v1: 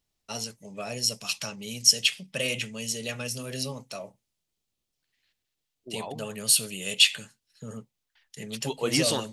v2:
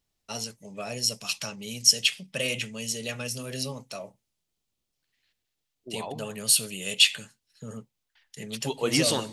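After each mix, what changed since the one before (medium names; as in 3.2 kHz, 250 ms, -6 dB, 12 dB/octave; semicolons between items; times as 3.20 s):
second voice: send +10.0 dB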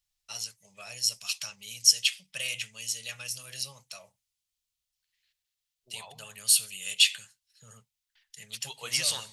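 master: add amplifier tone stack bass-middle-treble 10-0-10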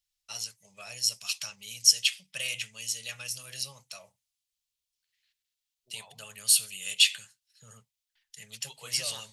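second voice -6.5 dB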